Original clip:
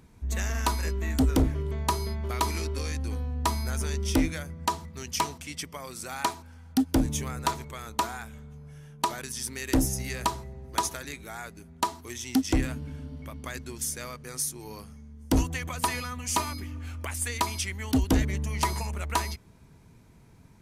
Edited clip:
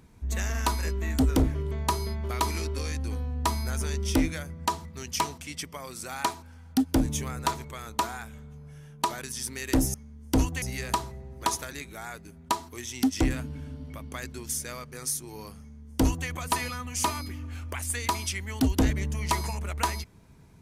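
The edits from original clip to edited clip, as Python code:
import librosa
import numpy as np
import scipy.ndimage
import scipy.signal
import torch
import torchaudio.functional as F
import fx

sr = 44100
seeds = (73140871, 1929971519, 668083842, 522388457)

y = fx.edit(x, sr, fx.duplicate(start_s=14.92, length_s=0.68, to_s=9.94), tone=tone)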